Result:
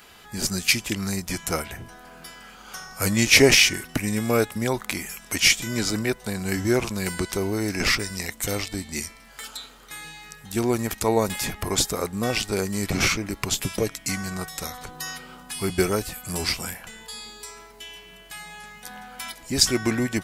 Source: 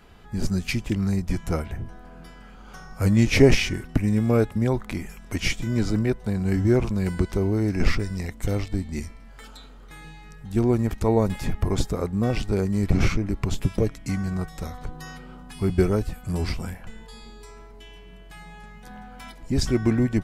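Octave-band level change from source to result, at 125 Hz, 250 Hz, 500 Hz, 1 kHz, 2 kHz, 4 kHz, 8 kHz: −7.0, −3.0, −0.5, +3.5, +8.0, +11.0, +13.5 decibels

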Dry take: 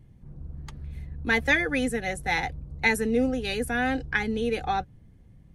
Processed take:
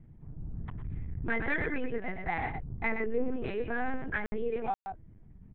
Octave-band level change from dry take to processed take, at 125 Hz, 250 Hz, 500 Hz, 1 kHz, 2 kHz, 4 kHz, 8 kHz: −3.5 dB, −8.5 dB, −5.5 dB, −6.0 dB, −8.5 dB, −20.0 dB, below −35 dB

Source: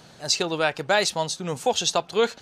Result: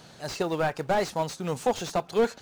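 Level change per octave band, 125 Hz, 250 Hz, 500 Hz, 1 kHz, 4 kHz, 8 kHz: +0.5, +0.5, −2.0, −2.5, −13.5, −12.0 decibels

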